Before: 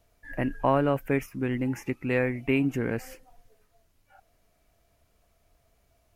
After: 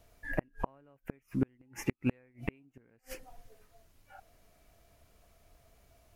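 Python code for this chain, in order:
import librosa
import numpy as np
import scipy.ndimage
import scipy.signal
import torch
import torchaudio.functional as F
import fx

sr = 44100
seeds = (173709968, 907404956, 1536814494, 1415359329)

y = fx.gate_flip(x, sr, shuts_db=-20.0, range_db=-40)
y = y * 10.0 ** (3.5 / 20.0)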